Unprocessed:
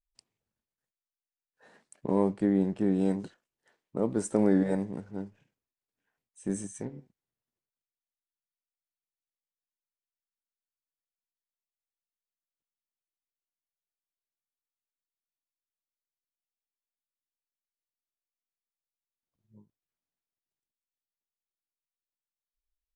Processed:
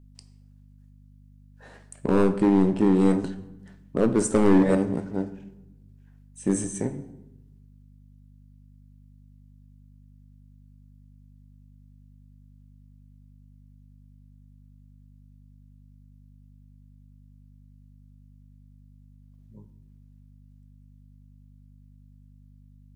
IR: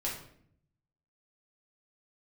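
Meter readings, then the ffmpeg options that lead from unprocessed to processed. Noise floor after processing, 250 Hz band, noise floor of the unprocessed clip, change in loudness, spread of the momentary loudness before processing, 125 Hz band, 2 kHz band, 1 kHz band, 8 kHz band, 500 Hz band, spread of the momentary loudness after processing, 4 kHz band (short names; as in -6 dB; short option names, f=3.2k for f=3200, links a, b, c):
-52 dBFS, +6.5 dB, under -85 dBFS, +6.0 dB, 16 LU, +6.5 dB, +9.5 dB, +8.0 dB, +9.0 dB, +6.5 dB, 14 LU, n/a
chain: -filter_complex "[0:a]volume=21.5dB,asoftclip=hard,volume=-21.5dB,aeval=exprs='val(0)+0.00112*(sin(2*PI*50*n/s)+sin(2*PI*2*50*n/s)/2+sin(2*PI*3*50*n/s)/3+sin(2*PI*4*50*n/s)/4+sin(2*PI*5*50*n/s)/5)':c=same,asplit=2[a][b];[1:a]atrim=start_sample=2205,asetrate=28665,aresample=44100[c];[b][c]afir=irnorm=-1:irlink=0,volume=-14dB[d];[a][d]amix=inputs=2:normalize=0,volume=7dB"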